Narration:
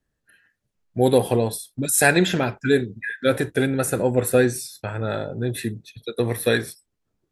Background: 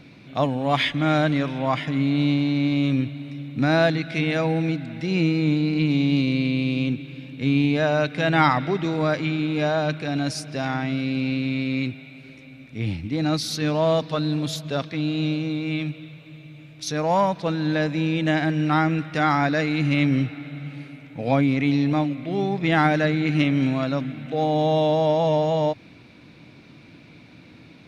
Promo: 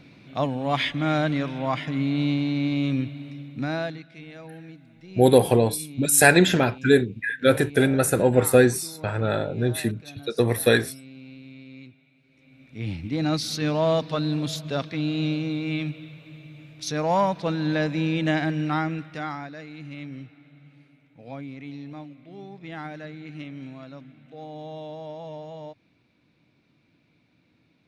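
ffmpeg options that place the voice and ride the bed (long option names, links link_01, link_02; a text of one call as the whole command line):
ffmpeg -i stem1.wav -i stem2.wav -filter_complex "[0:a]adelay=4200,volume=1.5dB[link_01];[1:a]volume=15dB,afade=type=out:start_time=3.24:duration=0.86:silence=0.149624,afade=type=in:start_time=12.29:duration=0.83:silence=0.125893,afade=type=out:start_time=18.27:duration=1.22:silence=0.158489[link_02];[link_01][link_02]amix=inputs=2:normalize=0" out.wav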